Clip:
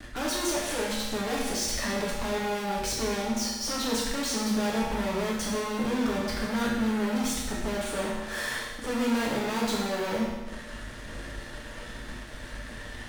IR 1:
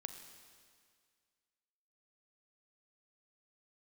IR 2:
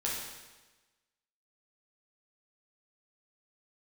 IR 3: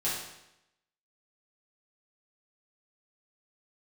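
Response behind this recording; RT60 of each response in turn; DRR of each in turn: 2; 2.0 s, 1.2 s, 0.85 s; 7.0 dB, -5.0 dB, -8.5 dB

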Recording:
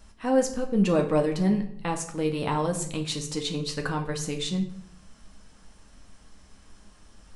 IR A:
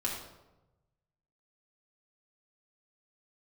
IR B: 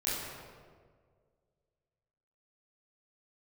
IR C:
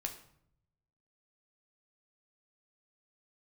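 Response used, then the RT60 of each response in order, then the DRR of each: C; 1.0 s, 1.8 s, 0.70 s; -4.0 dB, -10.0 dB, 3.0 dB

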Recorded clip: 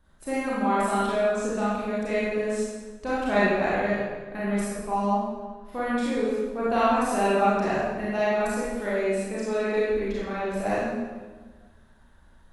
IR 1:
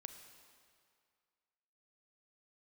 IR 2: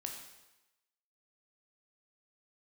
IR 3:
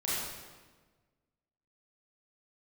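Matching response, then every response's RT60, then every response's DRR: 3; 2.2 s, 1.0 s, 1.4 s; 7.0 dB, 1.5 dB, -9.0 dB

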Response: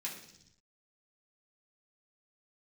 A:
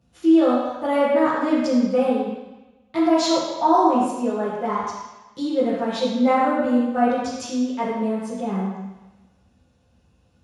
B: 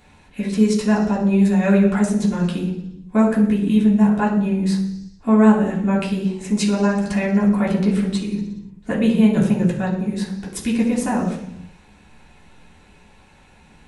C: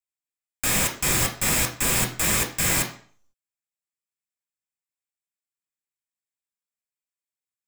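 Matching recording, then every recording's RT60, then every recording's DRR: B; 1.1 s, 0.75 s, 0.45 s; -10.0 dB, -5.5 dB, 1.5 dB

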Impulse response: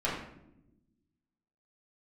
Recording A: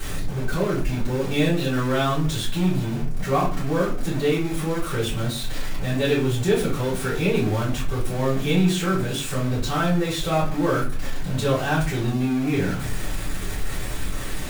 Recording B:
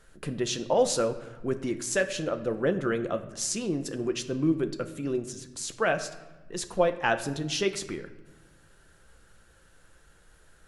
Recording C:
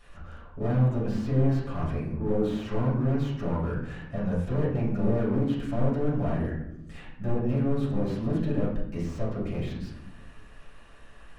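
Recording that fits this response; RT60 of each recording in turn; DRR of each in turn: C; 0.40 s, 1.2 s, no single decay rate; -10.5 dB, 7.5 dB, -8.0 dB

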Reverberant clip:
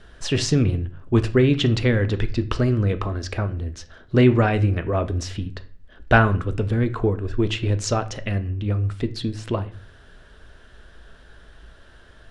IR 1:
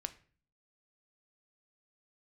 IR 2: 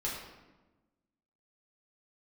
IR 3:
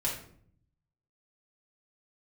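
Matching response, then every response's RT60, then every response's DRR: 1; 0.45 s, 1.2 s, 0.60 s; 9.5 dB, -6.0 dB, -5.5 dB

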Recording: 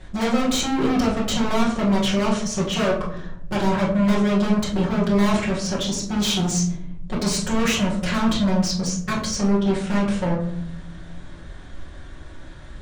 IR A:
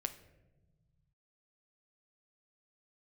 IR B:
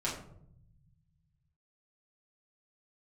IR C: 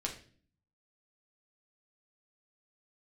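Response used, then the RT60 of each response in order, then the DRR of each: B; 1.1 s, 0.70 s, 0.45 s; 8.0 dB, -7.0 dB, -0.5 dB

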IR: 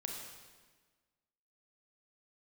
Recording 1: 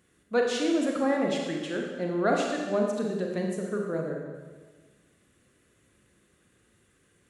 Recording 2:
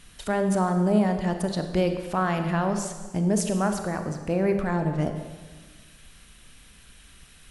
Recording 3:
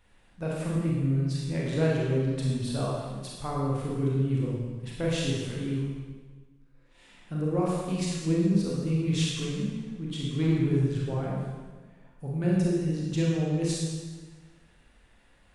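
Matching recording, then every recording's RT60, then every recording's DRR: 1; 1.4 s, 1.4 s, 1.4 s; 0.0 dB, 6.0 dB, -4.5 dB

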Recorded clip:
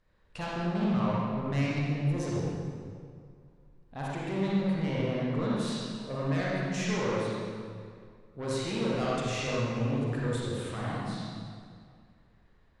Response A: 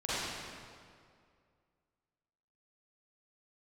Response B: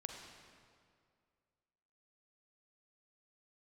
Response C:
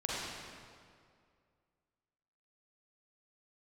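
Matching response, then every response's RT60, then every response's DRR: C; 2.2 s, 2.2 s, 2.2 s; -12.0 dB, 2.5 dB, -6.5 dB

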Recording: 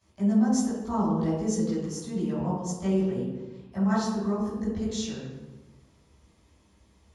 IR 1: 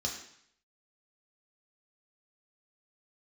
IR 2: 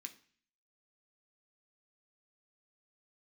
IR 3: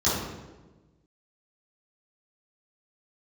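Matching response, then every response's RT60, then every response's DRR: 3; 0.65 s, 0.45 s, 1.2 s; -1.0 dB, 4.5 dB, -12.0 dB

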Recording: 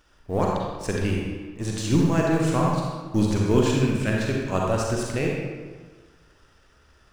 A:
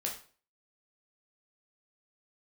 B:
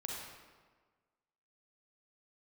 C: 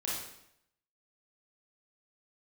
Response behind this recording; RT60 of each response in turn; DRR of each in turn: B; 0.40 s, 1.5 s, 0.75 s; -1.5 dB, -2.5 dB, -6.5 dB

